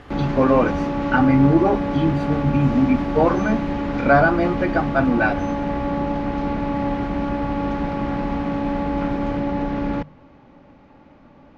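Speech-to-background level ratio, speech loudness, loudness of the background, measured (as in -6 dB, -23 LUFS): 4.5 dB, -19.5 LUFS, -24.0 LUFS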